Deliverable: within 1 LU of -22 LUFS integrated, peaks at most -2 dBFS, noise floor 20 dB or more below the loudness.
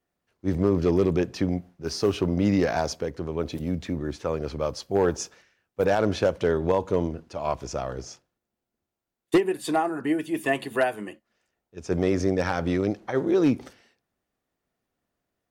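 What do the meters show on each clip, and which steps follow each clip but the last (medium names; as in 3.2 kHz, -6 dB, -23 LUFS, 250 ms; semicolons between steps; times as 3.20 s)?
clipped samples 0.3%; clipping level -13.0 dBFS; loudness -26.0 LUFS; peak level -13.0 dBFS; loudness target -22.0 LUFS
-> clip repair -13 dBFS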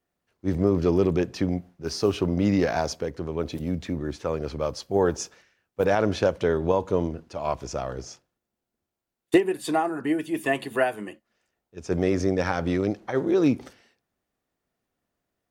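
clipped samples 0.0%; loudness -26.0 LUFS; peak level -7.0 dBFS; loudness target -22.0 LUFS
-> trim +4 dB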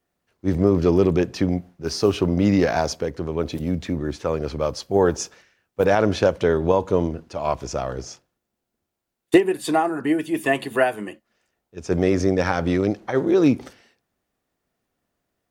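loudness -22.0 LUFS; peak level -3.0 dBFS; noise floor -81 dBFS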